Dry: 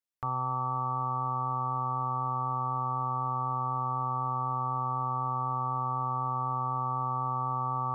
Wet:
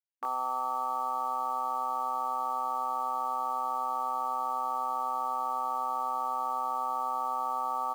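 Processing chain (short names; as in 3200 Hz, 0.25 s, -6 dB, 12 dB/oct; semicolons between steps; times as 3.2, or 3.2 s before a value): bit-crush 9-bit; brick-wall FIR high-pass 250 Hz; doubler 22 ms -2.5 dB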